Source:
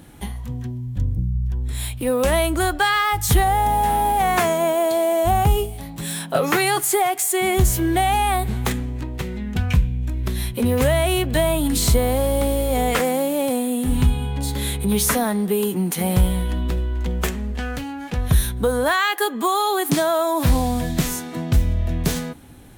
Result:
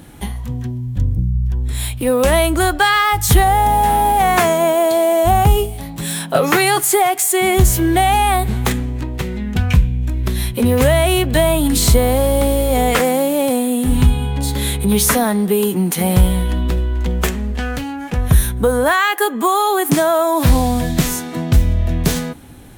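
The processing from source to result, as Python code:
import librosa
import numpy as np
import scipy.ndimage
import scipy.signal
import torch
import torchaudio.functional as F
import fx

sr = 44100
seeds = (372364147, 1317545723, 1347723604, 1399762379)

y = fx.peak_eq(x, sr, hz=4100.0, db=-5.5, octaves=0.81, at=(17.96, 20.33))
y = F.gain(torch.from_numpy(y), 5.0).numpy()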